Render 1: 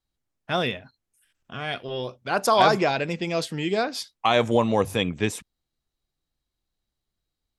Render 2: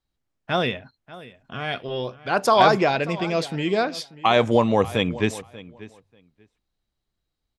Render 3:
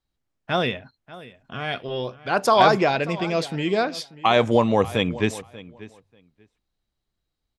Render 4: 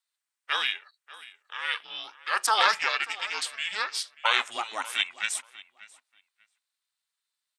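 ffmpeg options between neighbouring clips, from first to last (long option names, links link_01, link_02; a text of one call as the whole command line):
ffmpeg -i in.wav -filter_complex "[0:a]highshelf=frequency=7100:gain=-9.5,asplit=2[link_01][link_02];[link_02]adelay=588,lowpass=frequency=4100:poles=1,volume=-18dB,asplit=2[link_03][link_04];[link_04]adelay=588,lowpass=frequency=4100:poles=1,volume=0.16[link_05];[link_01][link_03][link_05]amix=inputs=3:normalize=0,volume=2.5dB" out.wav
ffmpeg -i in.wav -af anull out.wav
ffmpeg -i in.wav -af "highpass=frequency=1200:width=0.5412,highpass=frequency=1200:width=1.3066,equalizer=frequency=8600:width_type=o:width=0.28:gain=10.5,aeval=exprs='val(0)*sin(2*PI*220*n/s)':channel_layout=same,volume=4dB" out.wav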